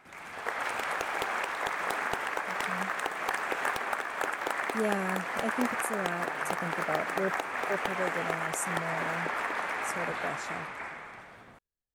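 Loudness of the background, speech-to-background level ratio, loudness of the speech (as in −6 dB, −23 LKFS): −32.5 LKFS, −4.5 dB, −37.0 LKFS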